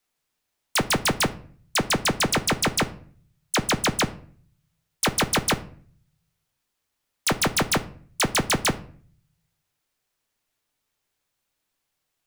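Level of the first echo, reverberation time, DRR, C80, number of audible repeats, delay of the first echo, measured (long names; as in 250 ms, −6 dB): no echo audible, 0.50 s, 10.0 dB, 21.0 dB, no echo audible, no echo audible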